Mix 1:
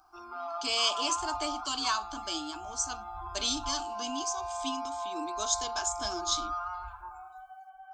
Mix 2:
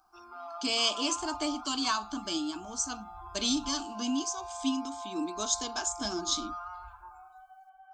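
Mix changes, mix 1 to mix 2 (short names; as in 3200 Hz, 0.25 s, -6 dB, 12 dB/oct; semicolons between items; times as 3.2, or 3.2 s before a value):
speech: remove HPF 430 Hz 12 dB/oct; background -5.0 dB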